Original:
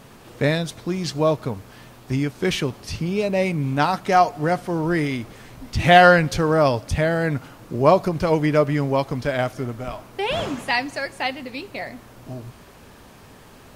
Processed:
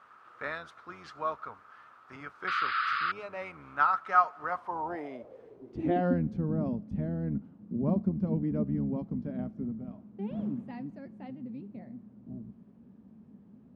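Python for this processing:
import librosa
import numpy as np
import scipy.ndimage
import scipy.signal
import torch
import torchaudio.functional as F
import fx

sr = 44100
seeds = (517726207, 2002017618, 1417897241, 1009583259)

y = fx.octave_divider(x, sr, octaves=1, level_db=-3.0)
y = fx.spec_paint(y, sr, seeds[0], shape='noise', start_s=2.47, length_s=0.65, low_hz=1100.0, high_hz=5100.0, level_db=-22.0)
y = fx.filter_sweep_bandpass(y, sr, from_hz=1300.0, to_hz=210.0, start_s=4.39, end_s=6.27, q=7.3)
y = F.gain(torch.from_numpy(y), 4.0).numpy()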